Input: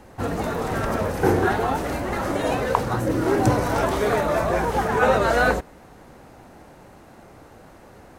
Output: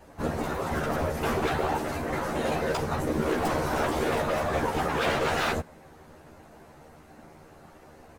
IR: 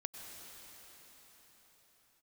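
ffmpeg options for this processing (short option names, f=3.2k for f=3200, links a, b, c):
-filter_complex "[0:a]aeval=exprs='0.141*(abs(mod(val(0)/0.141+3,4)-2)-1)':c=same,afftfilt=real='hypot(re,im)*cos(2*PI*random(0))':imag='hypot(re,im)*sin(2*PI*random(1))':win_size=512:overlap=0.75,asplit=2[a][b];[b]adelay=13,volume=-2dB[c];[a][c]amix=inputs=2:normalize=0"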